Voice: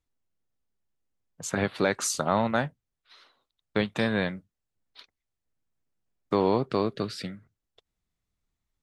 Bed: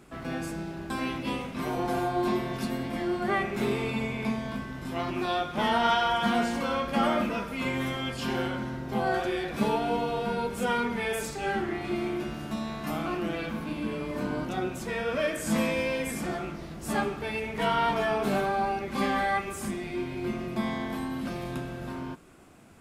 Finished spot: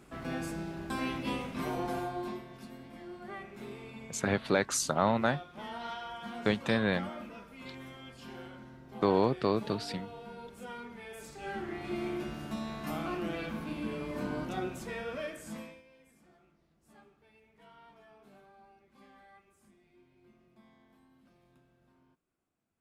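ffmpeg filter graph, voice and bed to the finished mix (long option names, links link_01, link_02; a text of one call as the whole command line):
ffmpeg -i stem1.wav -i stem2.wav -filter_complex "[0:a]adelay=2700,volume=-2.5dB[link_01];[1:a]volume=9dB,afade=type=out:start_time=1.6:duration=0.86:silence=0.211349,afade=type=in:start_time=11.13:duration=0.96:silence=0.251189,afade=type=out:start_time=14.58:duration=1.24:silence=0.0446684[link_02];[link_01][link_02]amix=inputs=2:normalize=0" out.wav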